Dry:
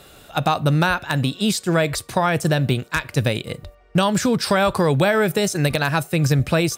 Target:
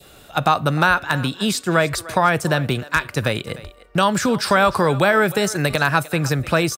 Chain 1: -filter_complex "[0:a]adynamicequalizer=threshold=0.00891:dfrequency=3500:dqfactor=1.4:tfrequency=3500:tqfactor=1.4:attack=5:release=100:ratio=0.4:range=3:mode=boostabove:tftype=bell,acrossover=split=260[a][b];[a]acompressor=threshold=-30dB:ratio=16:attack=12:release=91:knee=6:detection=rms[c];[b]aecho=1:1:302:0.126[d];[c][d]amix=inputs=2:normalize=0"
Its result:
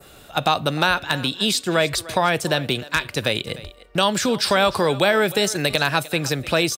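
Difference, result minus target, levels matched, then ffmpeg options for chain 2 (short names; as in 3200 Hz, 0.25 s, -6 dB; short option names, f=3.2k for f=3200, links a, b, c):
compressor: peak gain reduction +9 dB; 4000 Hz band +6.0 dB
-filter_complex "[0:a]adynamicequalizer=threshold=0.00891:dfrequency=1300:dqfactor=1.4:tfrequency=1300:tqfactor=1.4:attack=5:release=100:ratio=0.4:range=3:mode=boostabove:tftype=bell,acrossover=split=260[a][b];[a]acompressor=threshold=-20.5dB:ratio=16:attack=12:release=91:knee=6:detection=rms[c];[b]aecho=1:1:302:0.126[d];[c][d]amix=inputs=2:normalize=0"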